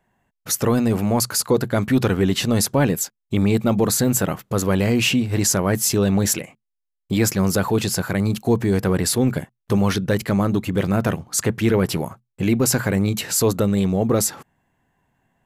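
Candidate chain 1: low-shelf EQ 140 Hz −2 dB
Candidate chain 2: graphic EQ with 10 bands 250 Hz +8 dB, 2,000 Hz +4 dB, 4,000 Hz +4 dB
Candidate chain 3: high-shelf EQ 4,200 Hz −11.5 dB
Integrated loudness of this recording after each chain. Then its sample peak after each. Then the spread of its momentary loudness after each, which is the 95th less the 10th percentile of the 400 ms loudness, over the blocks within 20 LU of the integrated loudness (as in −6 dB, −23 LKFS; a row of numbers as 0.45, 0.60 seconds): −20.5, −16.0, −21.0 LKFS; −8.0, −1.5, −8.5 dBFS; 5, 6, 6 LU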